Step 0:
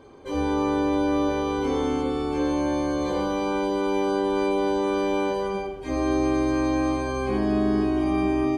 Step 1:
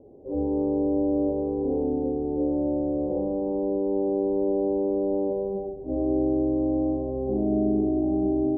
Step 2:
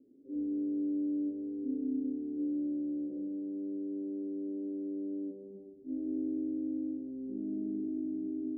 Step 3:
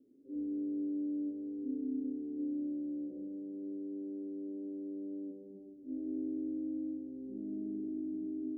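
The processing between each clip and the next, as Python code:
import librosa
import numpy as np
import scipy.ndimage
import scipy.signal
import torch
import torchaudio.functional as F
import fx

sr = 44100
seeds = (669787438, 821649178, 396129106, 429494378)

y1 = scipy.signal.sosfilt(scipy.signal.butter(8, 710.0, 'lowpass', fs=sr, output='sos'), x)
y1 = fx.low_shelf(y1, sr, hz=130.0, db=-4.0)
y2 = fx.rider(y1, sr, range_db=3, speed_s=2.0)
y2 = fx.vowel_filter(y2, sr, vowel='i')
y2 = y2 * 10.0 ** (-3.0 / 20.0)
y3 = y2 + 10.0 ** (-15.5 / 20.0) * np.pad(y2, (int(549 * sr / 1000.0), 0))[:len(y2)]
y3 = y3 * 10.0 ** (-3.0 / 20.0)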